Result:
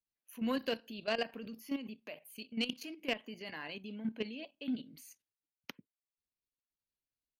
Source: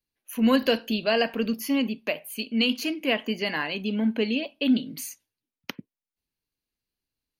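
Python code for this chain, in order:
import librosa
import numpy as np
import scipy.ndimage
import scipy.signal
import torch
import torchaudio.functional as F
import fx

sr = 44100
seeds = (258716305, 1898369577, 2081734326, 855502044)

y = fx.level_steps(x, sr, step_db=11)
y = fx.cheby_harmonics(y, sr, harmonics=(3,), levels_db=(-19,), full_scale_db=-10.5)
y = F.gain(torch.from_numpy(y), -7.5).numpy()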